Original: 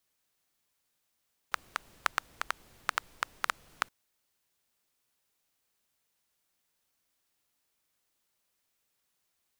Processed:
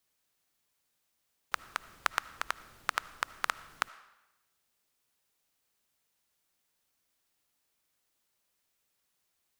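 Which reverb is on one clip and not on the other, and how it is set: digital reverb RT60 0.98 s, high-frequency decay 0.9×, pre-delay 35 ms, DRR 17.5 dB

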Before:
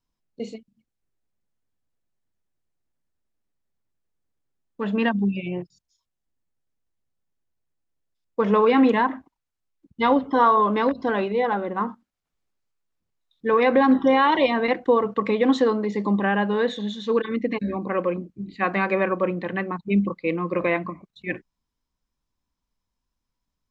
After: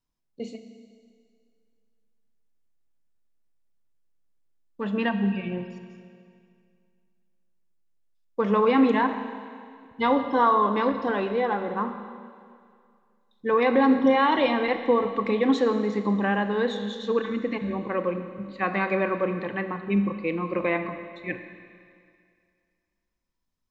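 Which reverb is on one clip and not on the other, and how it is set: Schroeder reverb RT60 2.2 s, combs from 26 ms, DRR 8 dB; gain -3 dB

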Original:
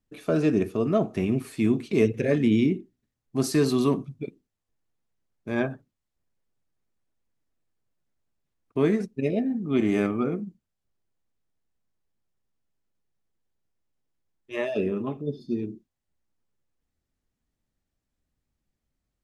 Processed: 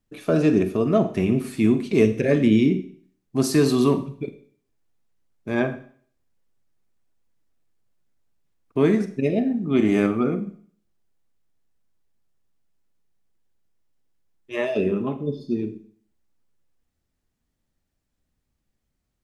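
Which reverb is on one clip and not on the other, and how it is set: Schroeder reverb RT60 0.52 s, combs from 33 ms, DRR 10.5 dB; gain +3.5 dB

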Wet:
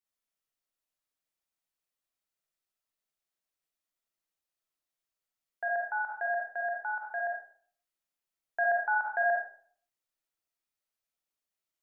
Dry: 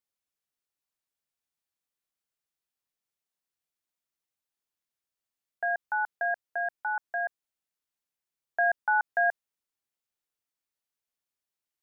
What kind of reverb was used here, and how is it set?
digital reverb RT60 0.53 s, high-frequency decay 0.55×, pre-delay 10 ms, DRR -2 dB; gain -4.5 dB

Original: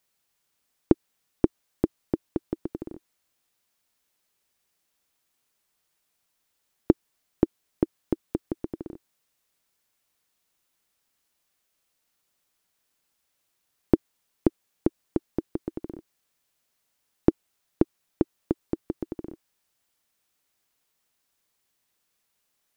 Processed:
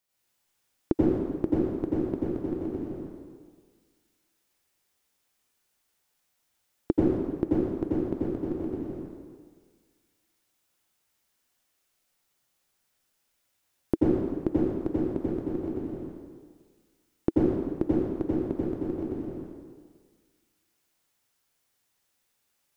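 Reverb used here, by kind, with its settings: plate-style reverb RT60 1.6 s, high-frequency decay 0.85×, pre-delay 75 ms, DRR -7.5 dB; gain -7 dB

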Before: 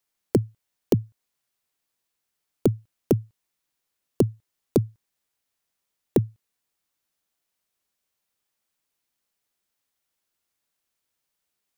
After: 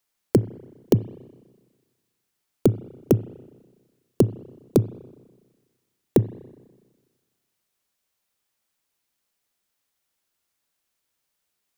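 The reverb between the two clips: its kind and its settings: spring tank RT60 1.4 s, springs 31/41 ms, chirp 75 ms, DRR 16.5 dB; gain +2.5 dB

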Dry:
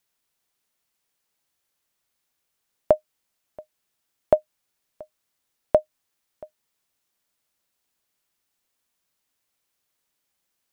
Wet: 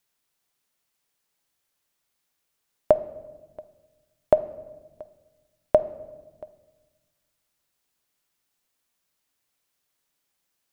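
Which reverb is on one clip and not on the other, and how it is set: shoebox room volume 880 m³, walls mixed, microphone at 0.34 m

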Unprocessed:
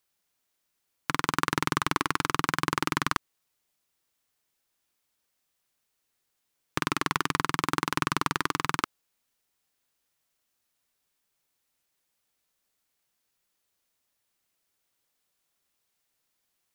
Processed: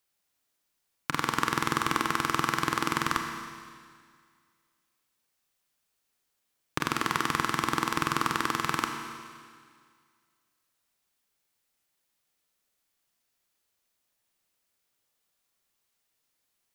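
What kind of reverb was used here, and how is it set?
Schroeder reverb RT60 2 s, combs from 27 ms, DRR 4 dB; gain -1.5 dB

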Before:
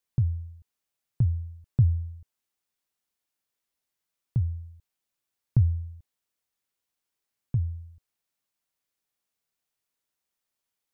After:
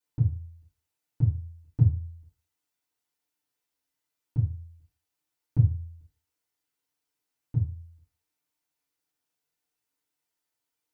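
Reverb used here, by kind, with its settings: FDN reverb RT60 0.37 s, low-frequency decay 0.9×, high-frequency decay 0.8×, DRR -9.5 dB; gain -9.5 dB

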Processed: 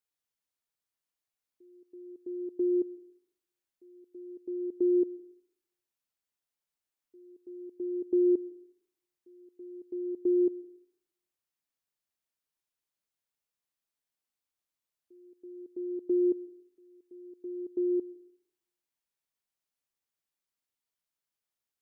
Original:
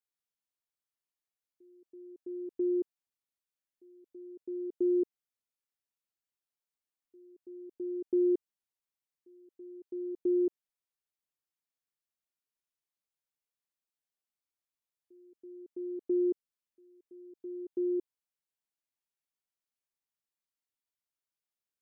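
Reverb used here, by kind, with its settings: digital reverb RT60 0.73 s, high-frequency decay 0.95×, pre-delay 75 ms, DRR 19.5 dB; gain +2 dB

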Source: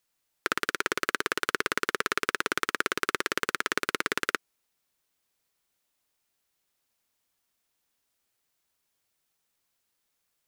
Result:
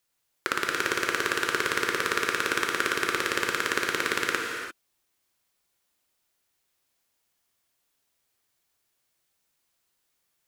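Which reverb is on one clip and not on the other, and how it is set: non-linear reverb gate 0.37 s flat, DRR 0.5 dB

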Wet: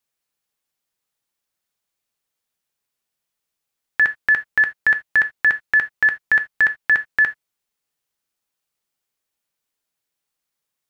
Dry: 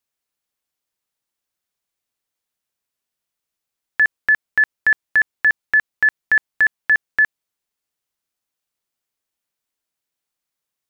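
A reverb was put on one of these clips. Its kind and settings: non-linear reverb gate 0.1 s falling, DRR 8.5 dB; gain +1 dB

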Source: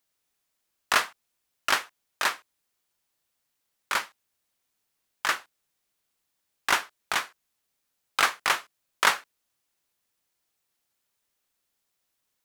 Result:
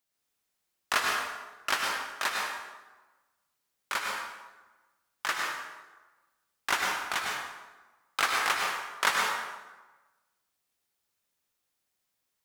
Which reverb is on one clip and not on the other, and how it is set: plate-style reverb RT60 1.2 s, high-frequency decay 0.7×, pre-delay 90 ms, DRR -0.5 dB; gain -5 dB

